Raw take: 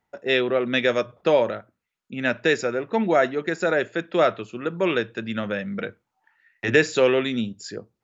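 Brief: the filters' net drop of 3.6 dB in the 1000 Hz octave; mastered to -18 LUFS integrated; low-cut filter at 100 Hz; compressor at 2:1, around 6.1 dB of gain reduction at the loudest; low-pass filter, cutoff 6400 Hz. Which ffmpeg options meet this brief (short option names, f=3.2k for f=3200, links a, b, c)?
-af "highpass=100,lowpass=6.4k,equalizer=f=1k:t=o:g=-5.5,acompressor=threshold=-25dB:ratio=2,volume=10.5dB"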